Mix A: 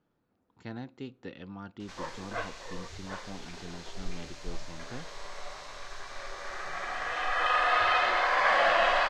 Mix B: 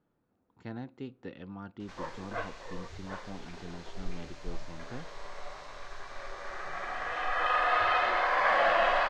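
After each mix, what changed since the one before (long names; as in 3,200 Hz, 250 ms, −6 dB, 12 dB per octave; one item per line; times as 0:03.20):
master: add high-shelf EQ 3,100 Hz −9 dB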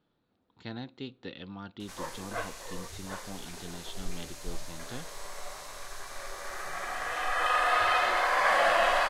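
speech: add low-pass with resonance 3,800 Hz, resonance Q 3.8
master: remove high-frequency loss of the air 170 metres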